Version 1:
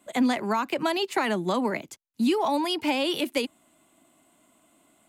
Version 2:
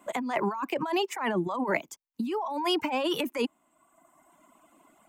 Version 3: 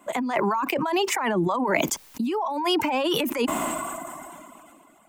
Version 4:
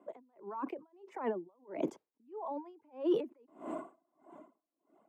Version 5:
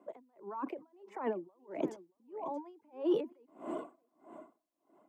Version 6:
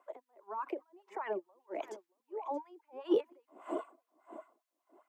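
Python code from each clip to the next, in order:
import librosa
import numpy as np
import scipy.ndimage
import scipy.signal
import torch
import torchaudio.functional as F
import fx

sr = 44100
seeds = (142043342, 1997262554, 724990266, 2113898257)

y1 = fx.graphic_eq_15(x, sr, hz=(100, 1000, 4000, 10000), db=(-10, 8, -9, -7))
y1 = fx.over_compress(y1, sr, threshold_db=-28.0, ratio=-1.0)
y1 = fx.dereverb_blind(y1, sr, rt60_s=1.3)
y2 = fx.sustainer(y1, sr, db_per_s=23.0)
y2 = y2 * 10.0 ** (3.5 / 20.0)
y3 = fx.bandpass_q(y2, sr, hz=410.0, q=1.9)
y3 = y3 * 10.0 ** (-36 * (0.5 - 0.5 * np.cos(2.0 * np.pi * 1.6 * np.arange(len(y3)) / sr)) / 20.0)
y3 = y3 * 10.0 ** (-1.0 / 20.0)
y4 = y3 + 10.0 ** (-15.5 / 20.0) * np.pad(y3, (int(629 * sr / 1000.0), 0))[:len(y3)]
y5 = fx.filter_lfo_highpass(y4, sr, shape='sine', hz=5.0, low_hz=300.0, high_hz=1700.0, q=1.4)
y5 = y5 * 10.0 ** (1.0 / 20.0)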